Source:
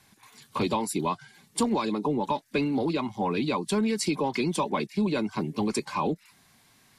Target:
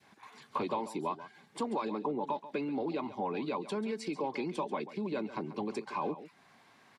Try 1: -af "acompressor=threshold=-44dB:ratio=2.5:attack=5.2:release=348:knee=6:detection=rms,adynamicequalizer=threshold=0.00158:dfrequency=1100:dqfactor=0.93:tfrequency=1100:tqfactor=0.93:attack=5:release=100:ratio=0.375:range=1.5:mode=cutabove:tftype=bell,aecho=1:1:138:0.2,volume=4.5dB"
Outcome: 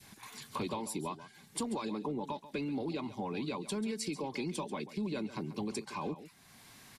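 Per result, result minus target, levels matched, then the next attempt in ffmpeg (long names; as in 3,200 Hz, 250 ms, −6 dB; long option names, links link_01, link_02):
downward compressor: peak gain reduction +5.5 dB; 1,000 Hz band −3.5 dB
-af "acompressor=threshold=-34.5dB:ratio=2.5:attack=5.2:release=348:knee=6:detection=rms,adynamicequalizer=threshold=0.00158:dfrequency=1100:dqfactor=0.93:tfrequency=1100:tqfactor=0.93:attack=5:release=100:ratio=0.375:range=1.5:mode=cutabove:tftype=bell,aecho=1:1:138:0.2,volume=4.5dB"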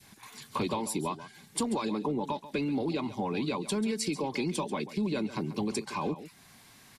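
1,000 Hz band −3.5 dB
-af "acompressor=threshold=-34.5dB:ratio=2.5:attack=5.2:release=348:knee=6:detection=rms,adynamicequalizer=threshold=0.00158:dfrequency=1100:dqfactor=0.93:tfrequency=1100:tqfactor=0.93:attack=5:release=100:ratio=0.375:range=1.5:mode=cutabove:tftype=bell,bandpass=frequency=790:width_type=q:width=0.58:csg=0,aecho=1:1:138:0.2,volume=4.5dB"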